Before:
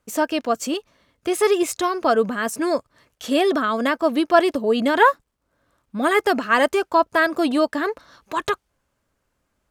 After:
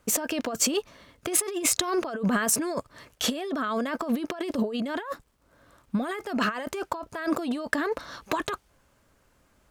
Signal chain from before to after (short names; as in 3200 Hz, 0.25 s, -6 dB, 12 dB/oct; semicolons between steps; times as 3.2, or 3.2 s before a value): negative-ratio compressor -29 dBFS, ratio -1